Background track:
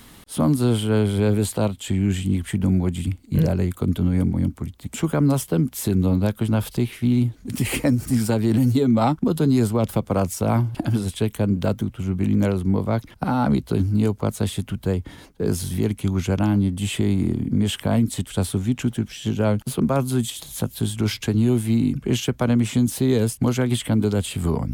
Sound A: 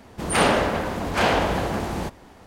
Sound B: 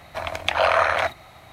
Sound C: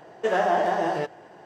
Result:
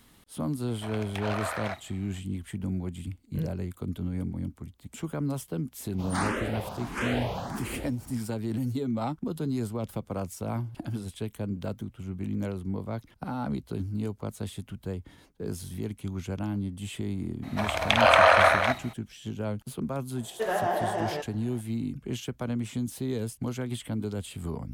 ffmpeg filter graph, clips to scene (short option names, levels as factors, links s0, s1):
-filter_complex "[2:a]asplit=2[s0][s1];[0:a]volume=0.251[s2];[s0]asoftclip=type=tanh:threshold=0.178[s3];[1:a]asplit=2[s4][s5];[s5]afreqshift=1.5[s6];[s4][s6]amix=inputs=2:normalize=1[s7];[s1]aecho=1:1:52.48|233.2:0.501|0.794[s8];[s3]atrim=end=1.52,asetpts=PTS-STARTPTS,volume=0.266,afade=t=in:d=0.004:c=hsin,afade=t=out:st=1.516:d=0.004:c=hsin,adelay=670[s9];[s7]atrim=end=2.46,asetpts=PTS-STARTPTS,volume=0.422,afade=t=in:d=0.004:c=hsin,afade=t=out:st=2.456:d=0.004:c=hsin,adelay=5800[s10];[s8]atrim=end=1.52,asetpts=PTS-STARTPTS,volume=0.891,afade=t=in:d=0.02,afade=t=out:st=1.5:d=0.02,adelay=17420[s11];[3:a]atrim=end=1.45,asetpts=PTS-STARTPTS,volume=0.531,afade=t=in:d=0.004:c=hsin,afade=t=out:st=1.446:d=0.004:c=hsin,adelay=20160[s12];[s2][s9][s10][s11][s12]amix=inputs=5:normalize=0"